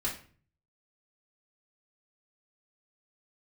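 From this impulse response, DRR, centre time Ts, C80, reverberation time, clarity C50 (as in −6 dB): −6.0 dB, 25 ms, 13.0 dB, 0.40 s, 8.0 dB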